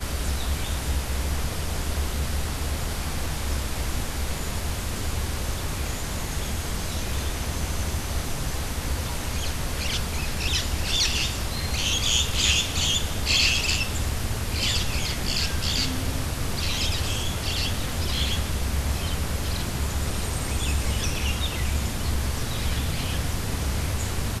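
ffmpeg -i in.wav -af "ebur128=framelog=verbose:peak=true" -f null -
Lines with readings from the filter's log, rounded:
Integrated loudness:
  I:         -26.3 LUFS
  Threshold: -36.3 LUFS
Loudness range:
  LRA:         7.0 LU
  Threshold: -46.1 LUFS
  LRA low:   -29.4 LUFS
  LRA high:  -22.3 LUFS
True peak:
  Peak:       -8.1 dBFS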